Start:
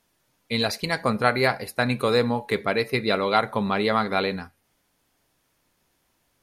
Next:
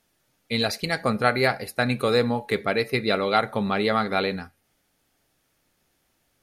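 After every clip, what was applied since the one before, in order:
notch filter 1,000 Hz, Q 7.4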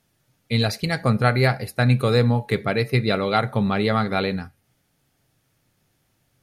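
parametric band 120 Hz +12.5 dB 1.1 octaves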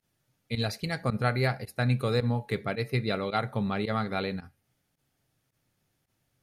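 fake sidechain pumping 109 BPM, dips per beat 1, −19 dB, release 62 ms
level −8 dB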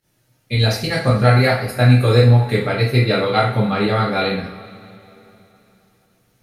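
coupled-rooms reverb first 0.45 s, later 3.3 s, from −21 dB, DRR −6 dB
level +5.5 dB

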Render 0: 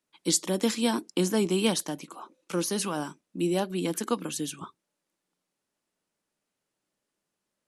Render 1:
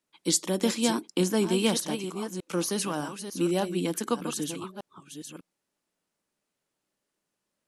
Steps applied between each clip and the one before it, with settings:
delay that plays each chunk backwards 601 ms, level −9 dB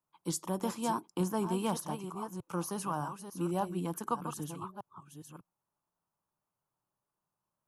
octave-band graphic EQ 125/250/500/1,000/2,000/4,000/8,000 Hz +7/−9/−7/+9/−12/−12/−8 dB
level −2 dB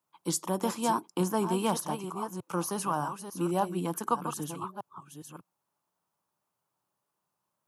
high-pass filter 190 Hz 6 dB per octave
level +5.5 dB

